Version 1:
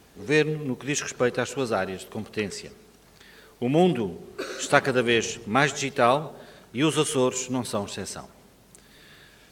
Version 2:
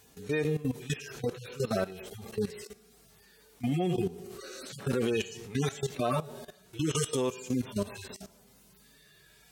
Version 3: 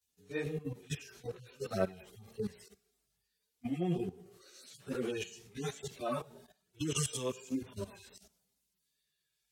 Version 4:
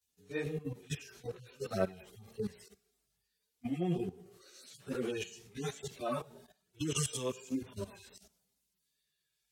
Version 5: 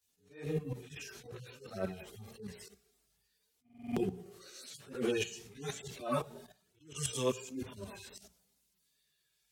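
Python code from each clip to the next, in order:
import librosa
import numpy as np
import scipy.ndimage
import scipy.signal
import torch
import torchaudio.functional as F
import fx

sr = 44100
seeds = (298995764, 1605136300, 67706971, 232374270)

y1 = fx.hpss_only(x, sr, part='harmonic')
y1 = fx.high_shelf(y1, sr, hz=4800.0, db=11.0)
y1 = fx.level_steps(y1, sr, step_db=16)
y1 = y1 * 10.0 ** (4.0 / 20.0)
y2 = fx.chorus_voices(y1, sr, voices=2, hz=1.1, base_ms=14, depth_ms=3.6, mix_pct=65)
y2 = fx.band_widen(y2, sr, depth_pct=70)
y2 = y2 * 10.0 ** (-5.0 / 20.0)
y3 = y2
y4 = fx.hum_notches(y3, sr, base_hz=60, count=3)
y4 = fx.buffer_glitch(y4, sr, at_s=(3.64,), block=2048, repeats=6)
y4 = fx.attack_slew(y4, sr, db_per_s=130.0)
y4 = y4 * 10.0 ** (5.0 / 20.0)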